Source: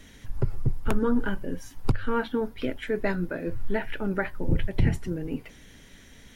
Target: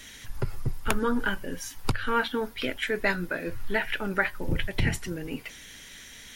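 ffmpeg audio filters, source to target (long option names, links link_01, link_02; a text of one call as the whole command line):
ffmpeg -i in.wav -af "tiltshelf=frequency=970:gain=-7.5,volume=3dB" out.wav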